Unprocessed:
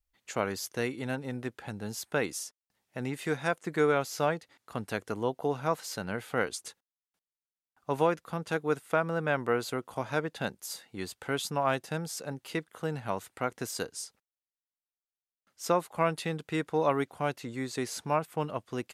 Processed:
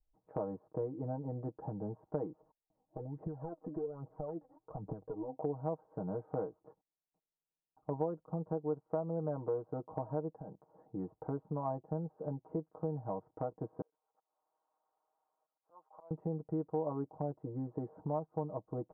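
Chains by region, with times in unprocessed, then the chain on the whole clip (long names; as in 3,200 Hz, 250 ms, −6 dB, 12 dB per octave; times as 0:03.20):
0:02.40–0:05.36: low-pass filter 1,600 Hz 6 dB per octave + downward compressor 5 to 1, threshold −41 dBFS + phase shifter 1.2 Hz, delay 4.1 ms, feedback 65%
0:10.32–0:10.81: leveller curve on the samples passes 2 + high-pass filter 63 Hz + downward compressor 8 to 1, threshold −42 dBFS
0:13.81–0:16.11: high-pass filter 1,100 Hz + upward compression, threshold −37 dBFS + volume swells 770 ms
whole clip: Butterworth low-pass 920 Hz 36 dB per octave; comb filter 6.4 ms, depth 86%; downward compressor 2.5 to 1, threshold −39 dBFS; level +1 dB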